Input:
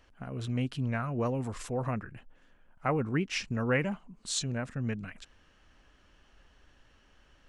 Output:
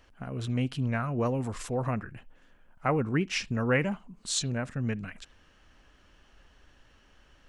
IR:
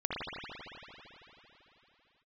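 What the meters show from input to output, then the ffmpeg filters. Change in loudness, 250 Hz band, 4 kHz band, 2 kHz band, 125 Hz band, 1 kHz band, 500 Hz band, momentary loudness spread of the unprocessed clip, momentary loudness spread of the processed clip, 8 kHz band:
+2.5 dB, +2.5 dB, +2.5 dB, +2.5 dB, +2.5 dB, +2.5 dB, +2.5 dB, 11 LU, 11 LU, +3.0 dB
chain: -filter_complex "[0:a]asplit=2[a][b];[1:a]atrim=start_sample=2205,atrim=end_sample=3528,highshelf=f=3.3k:g=11.5[c];[b][c]afir=irnorm=-1:irlink=0,volume=-28dB[d];[a][d]amix=inputs=2:normalize=0,volume=2dB"

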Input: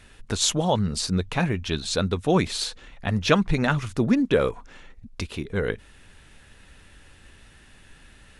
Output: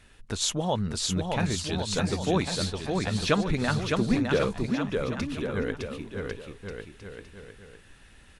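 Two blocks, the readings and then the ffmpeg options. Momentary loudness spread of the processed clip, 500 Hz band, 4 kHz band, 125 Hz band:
15 LU, -3.0 dB, -3.0 dB, -3.0 dB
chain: -af "aecho=1:1:610|1098|1488|1801|2051:0.631|0.398|0.251|0.158|0.1,volume=-5dB"

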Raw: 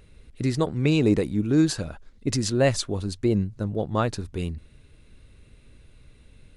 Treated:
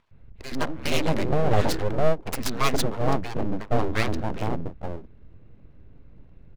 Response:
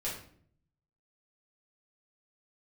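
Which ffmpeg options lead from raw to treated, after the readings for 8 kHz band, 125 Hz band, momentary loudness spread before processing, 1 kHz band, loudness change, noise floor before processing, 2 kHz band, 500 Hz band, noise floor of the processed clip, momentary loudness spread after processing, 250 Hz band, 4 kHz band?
-3.0 dB, -3.0 dB, 11 LU, +6.5 dB, -2.0 dB, -53 dBFS, +3.0 dB, 0.0 dB, -49 dBFS, 12 LU, -5.5 dB, +0.5 dB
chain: -filter_complex "[0:a]adynamicsmooth=sensitivity=5:basefreq=1k,acrossover=split=160|530[a][b][c];[a]adelay=110[d];[b]adelay=470[e];[d][e][c]amix=inputs=3:normalize=0,aeval=exprs='abs(val(0))':c=same,volume=5dB"

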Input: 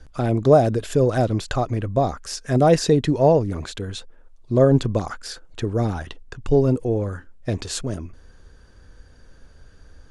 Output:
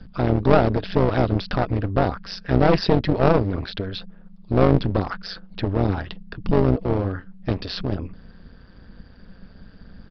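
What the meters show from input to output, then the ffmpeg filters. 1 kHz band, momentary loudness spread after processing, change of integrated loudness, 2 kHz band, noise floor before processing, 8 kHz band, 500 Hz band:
0.0 dB, 14 LU, -1.0 dB, +3.5 dB, -49 dBFS, under -20 dB, -2.5 dB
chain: -af "acontrast=23,aresample=11025,aeval=exprs='clip(val(0),-1,0.0891)':c=same,aresample=44100,tremolo=f=190:d=0.824,volume=1dB"

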